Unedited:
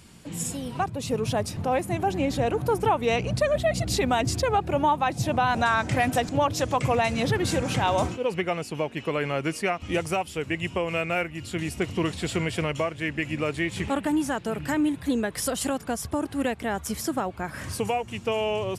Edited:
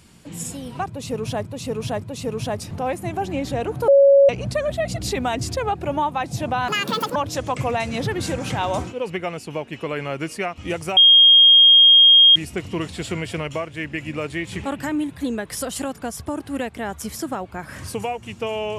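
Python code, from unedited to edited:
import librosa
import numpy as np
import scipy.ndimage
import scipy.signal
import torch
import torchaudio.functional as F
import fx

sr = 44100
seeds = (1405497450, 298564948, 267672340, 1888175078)

y = fx.edit(x, sr, fx.repeat(start_s=0.88, length_s=0.57, count=3),
    fx.bleep(start_s=2.74, length_s=0.41, hz=556.0, db=-8.5),
    fx.speed_span(start_s=5.54, length_s=0.86, speed=1.8),
    fx.bleep(start_s=10.21, length_s=1.39, hz=3240.0, db=-7.5),
    fx.cut(start_s=14.03, length_s=0.61), tone=tone)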